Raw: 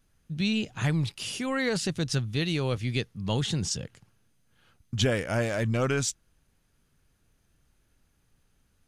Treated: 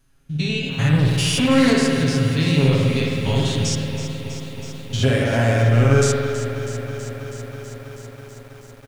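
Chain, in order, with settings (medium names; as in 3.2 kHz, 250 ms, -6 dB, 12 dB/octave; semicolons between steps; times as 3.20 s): spectrogram pixelated in time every 100 ms; comb 7.3 ms, depth 86%; 0.93–1.73 s: waveshaping leveller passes 2; spring tank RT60 1.7 s, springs 52 ms, chirp 45 ms, DRR -0.5 dB; bit-crushed delay 324 ms, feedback 80%, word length 8-bit, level -12 dB; trim +4.5 dB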